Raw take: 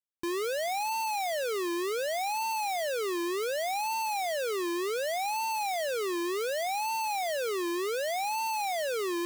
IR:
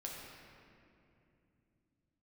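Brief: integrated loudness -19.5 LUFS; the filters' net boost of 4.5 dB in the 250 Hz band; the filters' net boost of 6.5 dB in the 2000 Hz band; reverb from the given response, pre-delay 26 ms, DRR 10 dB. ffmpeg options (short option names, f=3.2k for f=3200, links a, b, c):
-filter_complex "[0:a]equalizer=f=250:t=o:g=8.5,equalizer=f=2k:t=o:g=8,asplit=2[a][b];[1:a]atrim=start_sample=2205,adelay=26[c];[b][c]afir=irnorm=-1:irlink=0,volume=-9dB[d];[a][d]amix=inputs=2:normalize=0,volume=7.5dB"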